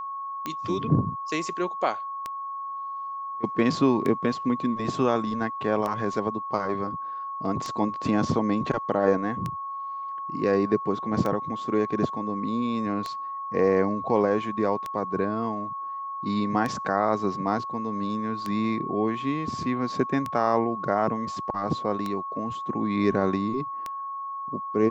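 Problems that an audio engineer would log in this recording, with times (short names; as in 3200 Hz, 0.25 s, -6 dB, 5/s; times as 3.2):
tick 33 1/3 rpm -16 dBFS
tone 1100 Hz -31 dBFS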